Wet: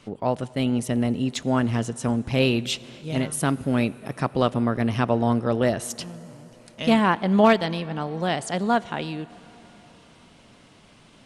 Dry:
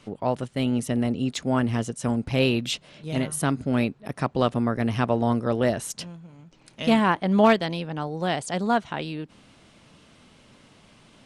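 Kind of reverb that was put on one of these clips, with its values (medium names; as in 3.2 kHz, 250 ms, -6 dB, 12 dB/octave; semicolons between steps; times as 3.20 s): plate-style reverb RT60 4.5 s, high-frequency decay 0.8×, DRR 18.5 dB; trim +1 dB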